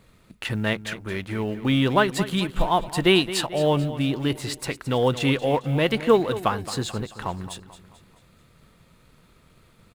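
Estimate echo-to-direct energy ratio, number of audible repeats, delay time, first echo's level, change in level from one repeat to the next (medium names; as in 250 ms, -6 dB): -13.0 dB, 4, 219 ms, -14.0 dB, -7.0 dB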